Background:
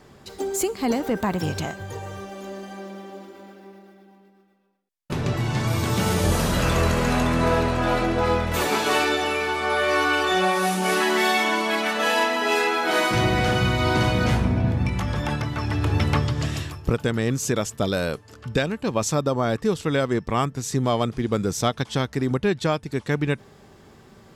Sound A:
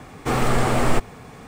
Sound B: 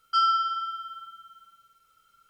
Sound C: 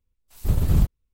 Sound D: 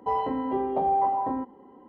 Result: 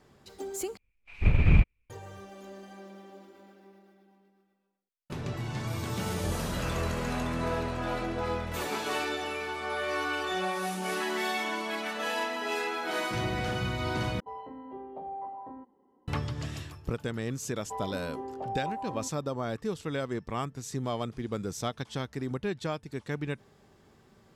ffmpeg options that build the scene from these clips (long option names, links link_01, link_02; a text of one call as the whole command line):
ffmpeg -i bed.wav -i cue0.wav -i cue1.wav -i cue2.wav -i cue3.wav -filter_complex "[4:a]asplit=2[link_01][link_02];[0:a]volume=-10.5dB[link_03];[3:a]lowpass=frequency=2400:width_type=q:width=16[link_04];[link_03]asplit=3[link_05][link_06][link_07];[link_05]atrim=end=0.774[link_08];[link_04]atrim=end=1.13,asetpts=PTS-STARTPTS,volume=-1.5dB[link_09];[link_06]atrim=start=1.896:end=14.204[link_10];[link_01]atrim=end=1.88,asetpts=PTS-STARTPTS,volume=-15.5dB[link_11];[link_07]atrim=start=16.076[link_12];[link_02]atrim=end=1.88,asetpts=PTS-STARTPTS,volume=-11.5dB,afade=type=in:duration=0.004:curve=hsin,afade=type=out:start_time=1.876:duration=0.004:curve=hsin,adelay=777924S[link_13];[link_08][link_09]acrossfade=duration=0.004:curve1=hsin:curve2=hsin[link_14];[link_14][link_10]acrossfade=duration=0.004:curve1=hsin:curve2=hsin[link_15];[link_15][link_11]acrossfade=duration=0.004:curve1=hsin:curve2=hsin[link_16];[link_16][link_12]acrossfade=duration=0.004:curve1=hsin:curve2=hsin[link_17];[link_17][link_13]amix=inputs=2:normalize=0" out.wav